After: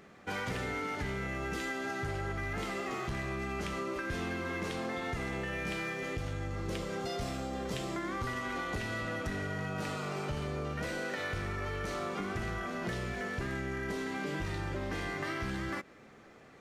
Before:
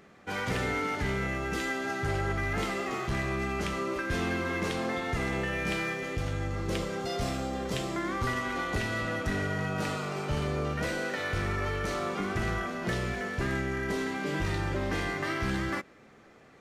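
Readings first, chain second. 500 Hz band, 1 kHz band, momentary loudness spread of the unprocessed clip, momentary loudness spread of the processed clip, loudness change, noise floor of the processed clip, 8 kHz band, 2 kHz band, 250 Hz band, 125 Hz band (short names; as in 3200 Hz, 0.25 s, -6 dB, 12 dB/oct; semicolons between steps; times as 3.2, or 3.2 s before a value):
-5.0 dB, -4.5 dB, 2 LU, 2 LU, -5.0 dB, -56 dBFS, -5.0 dB, -5.0 dB, -5.0 dB, -5.5 dB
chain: compressor, threshold -33 dBFS, peak gain reduction 7 dB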